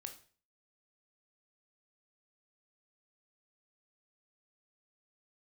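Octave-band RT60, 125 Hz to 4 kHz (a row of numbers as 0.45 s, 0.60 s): 0.50 s, 0.45 s, 0.45 s, 0.40 s, 0.40 s, 0.40 s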